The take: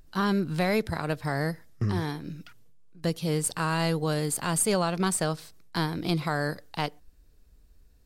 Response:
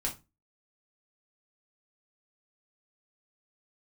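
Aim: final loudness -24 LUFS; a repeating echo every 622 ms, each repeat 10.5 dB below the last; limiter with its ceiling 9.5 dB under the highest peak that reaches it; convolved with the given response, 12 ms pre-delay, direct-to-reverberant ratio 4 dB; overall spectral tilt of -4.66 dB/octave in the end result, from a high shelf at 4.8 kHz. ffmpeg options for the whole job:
-filter_complex "[0:a]highshelf=f=4800:g=6,alimiter=limit=0.112:level=0:latency=1,aecho=1:1:622|1244|1866:0.299|0.0896|0.0269,asplit=2[s0][s1];[1:a]atrim=start_sample=2205,adelay=12[s2];[s1][s2]afir=irnorm=-1:irlink=0,volume=0.422[s3];[s0][s3]amix=inputs=2:normalize=0,volume=1.68"

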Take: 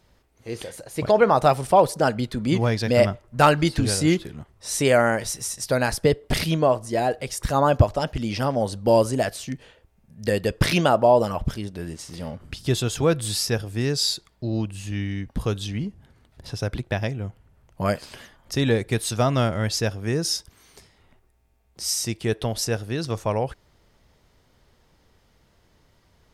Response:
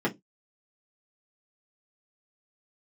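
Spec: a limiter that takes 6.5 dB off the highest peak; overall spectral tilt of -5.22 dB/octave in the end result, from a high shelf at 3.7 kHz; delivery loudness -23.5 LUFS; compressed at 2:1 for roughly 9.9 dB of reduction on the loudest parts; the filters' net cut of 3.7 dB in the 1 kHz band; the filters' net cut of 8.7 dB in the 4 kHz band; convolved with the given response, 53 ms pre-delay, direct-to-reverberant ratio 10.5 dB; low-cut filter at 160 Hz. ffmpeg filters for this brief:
-filter_complex "[0:a]highpass=160,equalizer=f=1000:t=o:g=-4.5,highshelf=f=3700:g=-6,equalizer=f=4000:t=o:g=-7,acompressor=threshold=0.0251:ratio=2,alimiter=limit=0.0944:level=0:latency=1,asplit=2[s0][s1];[1:a]atrim=start_sample=2205,adelay=53[s2];[s1][s2]afir=irnorm=-1:irlink=0,volume=0.0891[s3];[s0][s3]amix=inputs=2:normalize=0,volume=2.99"

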